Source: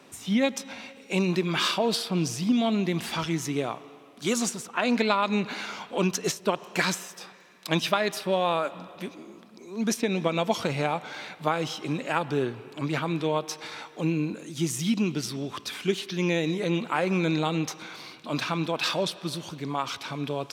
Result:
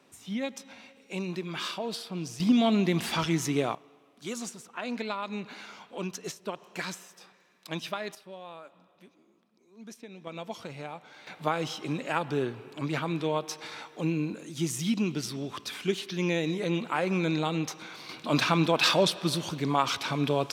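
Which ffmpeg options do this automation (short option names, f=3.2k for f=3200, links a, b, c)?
-af "asetnsamples=n=441:p=0,asendcmd='2.4 volume volume 1dB;3.75 volume volume -10dB;8.15 volume volume -19.5dB;10.27 volume volume -13dB;11.27 volume volume -2.5dB;18.09 volume volume 4dB',volume=-9dB"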